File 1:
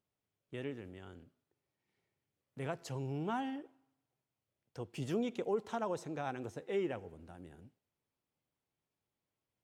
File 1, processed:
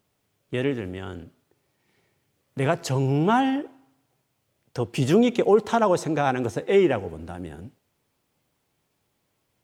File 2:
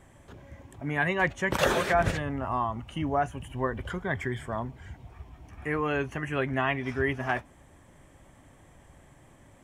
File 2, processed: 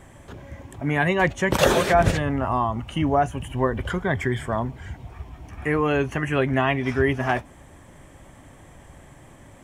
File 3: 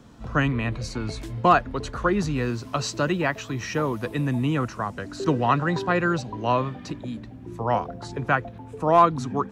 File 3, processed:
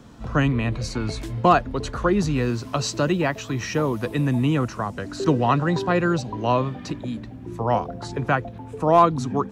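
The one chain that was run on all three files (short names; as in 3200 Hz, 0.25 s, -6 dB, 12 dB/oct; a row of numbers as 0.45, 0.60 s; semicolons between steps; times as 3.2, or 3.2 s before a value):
dynamic EQ 1600 Hz, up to -5 dB, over -35 dBFS, Q 0.87; match loudness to -23 LUFS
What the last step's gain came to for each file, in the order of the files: +16.5, +8.0, +3.5 dB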